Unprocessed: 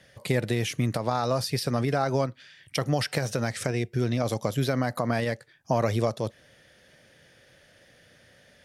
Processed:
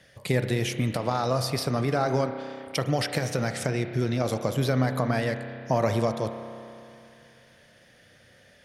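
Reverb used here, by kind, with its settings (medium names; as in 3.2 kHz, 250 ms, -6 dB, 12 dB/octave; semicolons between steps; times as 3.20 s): spring tank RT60 2.7 s, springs 31 ms, chirp 45 ms, DRR 7.5 dB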